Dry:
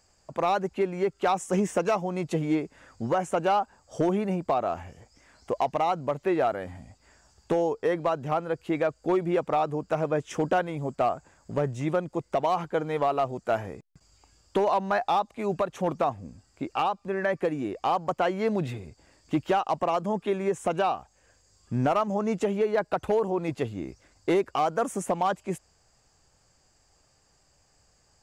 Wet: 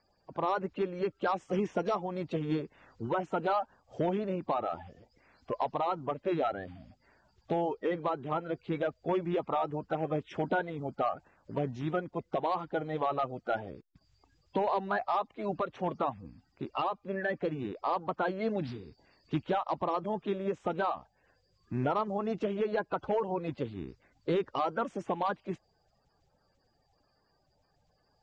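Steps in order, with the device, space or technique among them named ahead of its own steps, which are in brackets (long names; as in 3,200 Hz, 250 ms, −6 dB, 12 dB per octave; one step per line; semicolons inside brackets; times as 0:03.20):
clip after many re-uploads (low-pass filter 4,600 Hz 24 dB per octave; spectral magnitudes quantised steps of 30 dB)
0:18.61–0:19.41: parametric band 4,800 Hz +5 dB 0.76 octaves
level −5 dB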